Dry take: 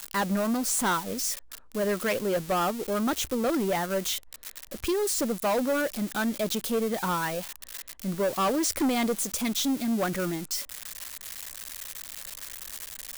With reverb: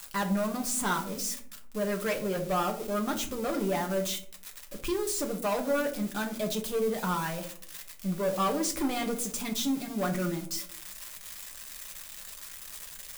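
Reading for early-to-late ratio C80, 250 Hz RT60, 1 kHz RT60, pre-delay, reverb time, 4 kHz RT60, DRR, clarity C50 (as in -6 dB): 16.0 dB, 0.90 s, 0.45 s, 5 ms, 0.55 s, 0.25 s, 1.5 dB, 11.5 dB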